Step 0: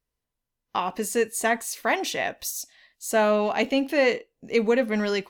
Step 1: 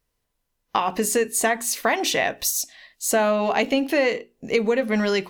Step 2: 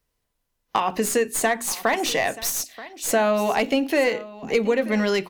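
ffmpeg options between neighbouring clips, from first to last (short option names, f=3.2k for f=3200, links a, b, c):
-af "acompressor=threshold=-26dB:ratio=5,bandreject=f=60:t=h:w=6,bandreject=f=120:t=h:w=6,bandreject=f=180:t=h:w=6,bandreject=f=240:t=h:w=6,bandreject=f=300:t=h:w=6,bandreject=f=360:t=h:w=6,bandreject=f=420:t=h:w=6,volume=8.5dB"
-filter_complex "[0:a]aecho=1:1:930:0.126,acrossover=split=160|1500[a][b][c];[c]aeval=exprs='clip(val(0),-1,0.0501)':c=same[d];[a][b][d]amix=inputs=3:normalize=0"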